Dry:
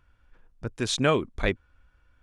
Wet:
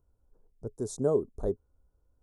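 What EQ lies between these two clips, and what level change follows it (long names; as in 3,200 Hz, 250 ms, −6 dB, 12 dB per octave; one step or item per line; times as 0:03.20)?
Chebyshev band-stop filter 670–8,200 Hz, order 2
parametric band 420 Hz +11 dB 0.21 octaves
high-shelf EQ 8,600 Hz +2.5 dB
−6.0 dB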